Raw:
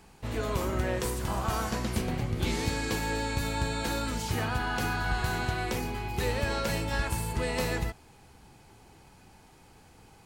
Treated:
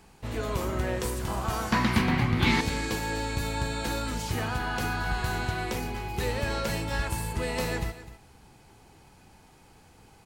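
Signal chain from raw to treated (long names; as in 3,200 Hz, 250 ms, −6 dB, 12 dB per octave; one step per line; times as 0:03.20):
0:01.72–0:02.61: octave-band graphic EQ 125/250/500/1,000/2,000/4,000/8,000 Hz +5/+8/−5/+11/+10/+6/−4 dB
single-tap delay 254 ms −15 dB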